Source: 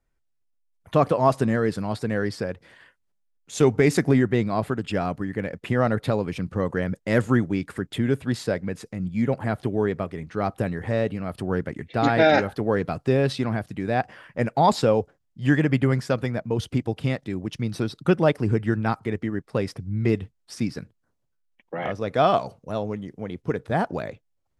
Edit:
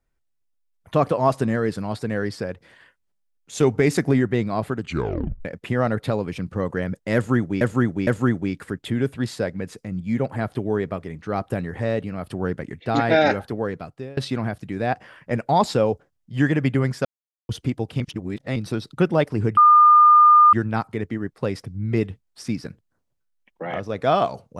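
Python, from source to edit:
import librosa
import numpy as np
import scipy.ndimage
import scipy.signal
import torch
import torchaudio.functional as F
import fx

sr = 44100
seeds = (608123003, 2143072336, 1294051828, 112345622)

y = fx.edit(x, sr, fx.tape_stop(start_s=4.82, length_s=0.63),
    fx.repeat(start_s=7.15, length_s=0.46, count=3),
    fx.fade_out_to(start_s=12.43, length_s=0.82, floor_db=-23.5),
    fx.silence(start_s=16.13, length_s=0.44),
    fx.reverse_span(start_s=17.08, length_s=0.56),
    fx.insert_tone(at_s=18.65, length_s=0.96, hz=1210.0, db=-8.5), tone=tone)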